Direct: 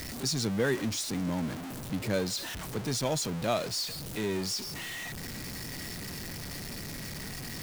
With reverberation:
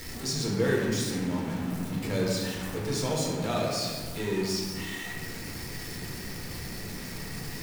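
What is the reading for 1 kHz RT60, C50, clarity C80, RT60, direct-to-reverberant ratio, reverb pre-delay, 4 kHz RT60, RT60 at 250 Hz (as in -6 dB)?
1.6 s, 0.5 dB, 2.0 dB, 1.7 s, -3.5 dB, 4 ms, 1.1 s, 2.9 s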